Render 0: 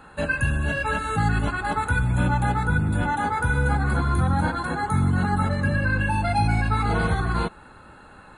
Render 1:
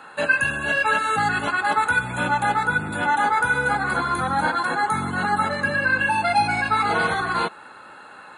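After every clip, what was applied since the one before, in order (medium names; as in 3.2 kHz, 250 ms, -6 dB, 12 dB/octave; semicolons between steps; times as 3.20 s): frequency weighting A; trim +5.5 dB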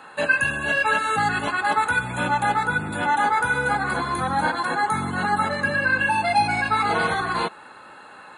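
band-stop 1.4 kHz, Q 13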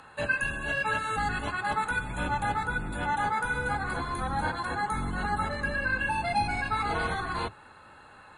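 octave divider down 2 oct, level +3 dB; upward compressor, threshold -43 dBFS; trim -8 dB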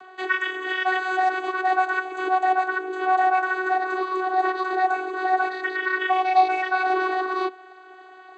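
vocoder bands 16, saw 373 Hz; trim +8 dB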